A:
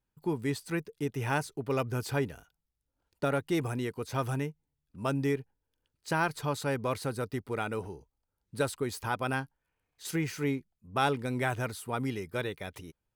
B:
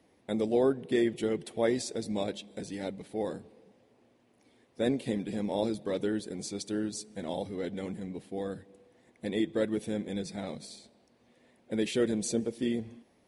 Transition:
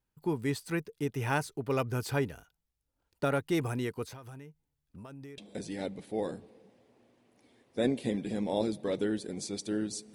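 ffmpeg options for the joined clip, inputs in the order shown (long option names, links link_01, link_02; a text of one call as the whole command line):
ffmpeg -i cue0.wav -i cue1.wav -filter_complex "[0:a]asettb=1/sr,asplit=3[link_01][link_02][link_03];[link_01]atrim=end=4.064[link_04];[link_02]atrim=start=4.06:end=5.38,asetpts=PTS-STARTPTS,afade=type=in:duration=0.004:curve=qsin,afade=type=out:start_time=1.316:duration=0.004:curve=qsin,acompressor=threshold=-43dB:ratio=16:attack=3.2:release=140:knee=1:detection=peak[link_05];[link_03]atrim=start=5.376[link_06];[link_04][link_05]acrossfade=duration=0.004:curve1=hsin:curve2=qsin[link_07];[link_07][link_06]acrossfade=duration=0.004:curve1=qsin:curve2=hsin,apad=whole_dur=10.14,atrim=end=10.14,atrim=end=5.382[link_08];[1:a]atrim=start=2.398:end=7.16[link_09];[link_08][link_09]acrossfade=duration=0.004:curve1=hsin:curve2=hsin" out.wav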